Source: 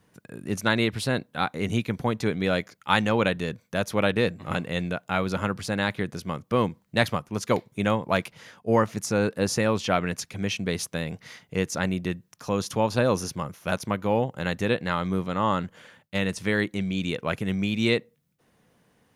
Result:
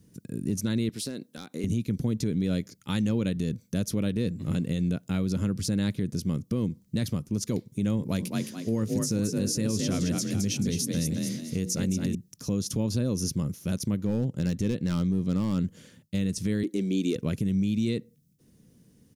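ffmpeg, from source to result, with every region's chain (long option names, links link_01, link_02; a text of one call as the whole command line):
ffmpeg -i in.wav -filter_complex "[0:a]asettb=1/sr,asplit=3[link_01][link_02][link_03];[link_01]atrim=end=0.894[link_04];[link_02]atrim=start=0.89:end=1.64,asetpts=PTS-STARTPTS,afade=type=in:duration=0.004:curve=qsin,afade=type=out:start_time=0.746:duration=0.004:curve=qsin,highpass=300,acompressor=threshold=-31dB:ratio=5:attack=3.2:release=140:knee=1:detection=peak,volume=24.5dB,asoftclip=hard,volume=-24.5dB[link_05];[link_03]atrim=start=1.636[link_06];[link_04][link_05]acrossfade=duration=0.004:curve1=hsin:curve2=qsin[link_07];[link_07][link_06]acrossfade=duration=0.004:curve1=qsin:curve2=hsin,asettb=1/sr,asplit=3[link_08][link_09][link_10];[link_08]atrim=end=7.974[link_11];[link_09]atrim=start=7.97:end=12.15,asetpts=PTS-STARTPTS,afade=type=in:duration=0.004:curve=qsin,afade=type=out:start_time=4.176:duration=0.004:curve=qsin,highshelf=frequency=4100:gain=5,bandreject=frequency=60:width_type=h:width=6,bandreject=frequency=120:width_type=h:width=6,bandreject=frequency=180:width_type=h:width=6,bandreject=frequency=240:width_type=h:width=6,bandreject=frequency=300:width_type=h:width=6,bandreject=frequency=360:width_type=h:width=6,bandreject=frequency=420:width_type=h:width=6,bandreject=frequency=480:width_type=h:width=6,asplit=5[link_12][link_13][link_14][link_15][link_16];[link_13]adelay=216,afreqshift=37,volume=-6dB[link_17];[link_14]adelay=432,afreqshift=74,volume=-14.6dB[link_18];[link_15]adelay=648,afreqshift=111,volume=-23.3dB[link_19];[link_16]adelay=864,afreqshift=148,volume=-31.9dB[link_20];[link_12][link_17][link_18][link_19][link_20]amix=inputs=5:normalize=0,atrim=end_sample=184338[link_21];[link_10]atrim=start=12.146[link_22];[link_11][link_21]acrossfade=duration=0.004:curve1=hsin:curve2=qsin[link_23];[link_23][link_22]acrossfade=duration=0.004:curve1=qsin:curve2=hsin,asettb=1/sr,asplit=3[link_24][link_25][link_26];[link_24]atrim=end=14.024[link_27];[link_25]atrim=start=14.02:end=15.59,asetpts=PTS-STARTPTS,afade=type=in:duration=0.004:curve=qsin,afade=type=out:start_time=1.566:duration=0.004:curve=qsin,highshelf=frequency=12000:gain=-11,aeval=exprs='clip(val(0),-1,0.112)':channel_layout=same[link_28];[link_26]atrim=start=15.586[link_29];[link_27][link_28]acrossfade=duration=0.004:curve1=hsin:curve2=qsin[link_30];[link_30][link_29]acrossfade=duration=0.004:curve1=qsin:curve2=hsin,asettb=1/sr,asplit=3[link_31][link_32][link_33];[link_31]atrim=end=16.634[link_34];[link_32]atrim=start=16.63:end=17.16,asetpts=PTS-STARTPTS,afade=type=in:duration=0.004:curve=qsin,afade=type=out:start_time=0.526:duration=0.004:curve=qsin,highpass=frequency=340:width_type=q:width=2,asoftclip=type=hard:threshold=-19.5dB[link_35];[link_33]atrim=start=17.156[link_36];[link_34][link_35]acrossfade=duration=0.004:curve1=hsin:curve2=qsin[link_37];[link_37][link_36]acrossfade=duration=0.004:curve1=qsin:curve2=hsin,firequalizer=gain_entry='entry(250,0);entry(760,-22);entry(5400,-3)':delay=0.05:min_phase=1,acompressor=threshold=-31dB:ratio=2,alimiter=level_in=2.5dB:limit=-24dB:level=0:latency=1:release=57,volume=-2.5dB,volume=8dB" out.wav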